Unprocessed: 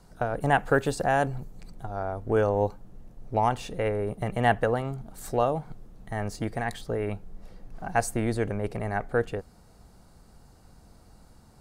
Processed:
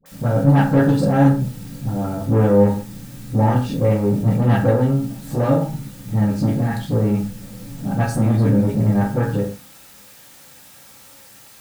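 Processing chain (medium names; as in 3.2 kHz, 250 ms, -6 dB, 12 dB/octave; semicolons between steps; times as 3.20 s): band-stop 750 Hz, Q 12; gate with hold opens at -40 dBFS; graphic EQ 125/250/2000/4000/8000 Hz +10/+11/-5/+4/-6 dB; in parallel at -10.5 dB: word length cut 6-bit, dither triangular; on the sum: phase dispersion highs, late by 59 ms, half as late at 770 Hz; saturation -15.5 dBFS, distortion -10 dB; reverberation, pre-delay 3 ms, DRR -2.5 dB; trim -1.5 dB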